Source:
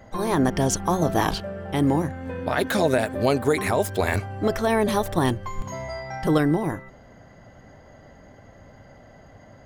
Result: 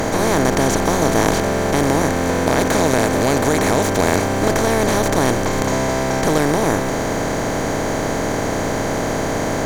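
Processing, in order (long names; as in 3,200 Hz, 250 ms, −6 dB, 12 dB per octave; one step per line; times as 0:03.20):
compressor on every frequency bin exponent 0.2
level −3 dB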